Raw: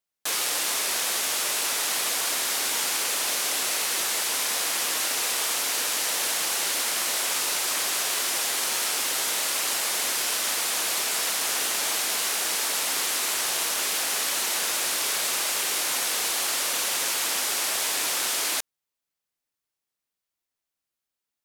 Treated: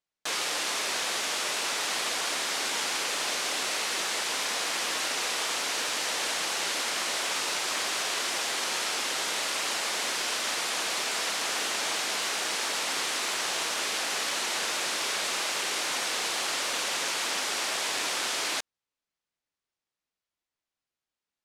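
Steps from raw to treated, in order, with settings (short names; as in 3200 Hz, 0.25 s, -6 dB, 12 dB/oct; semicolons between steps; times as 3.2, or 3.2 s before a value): air absorption 65 m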